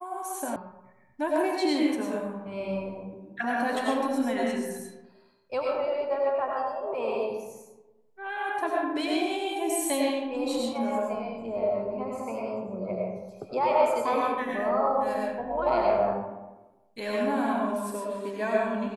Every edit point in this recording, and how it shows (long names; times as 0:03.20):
0:00.56: cut off before it has died away